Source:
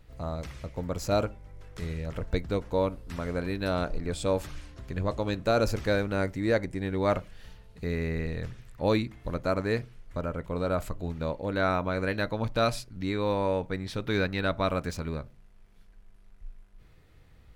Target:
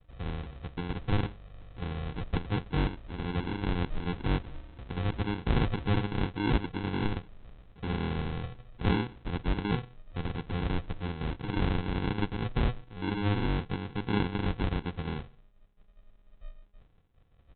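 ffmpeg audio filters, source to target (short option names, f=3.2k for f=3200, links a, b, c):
-af "agate=range=-33dB:threshold=-49dB:ratio=3:detection=peak,aresample=8000,acrusher=samples=13:mix=1:aa=0.000001,aresample=44100,volume=-1.5dB"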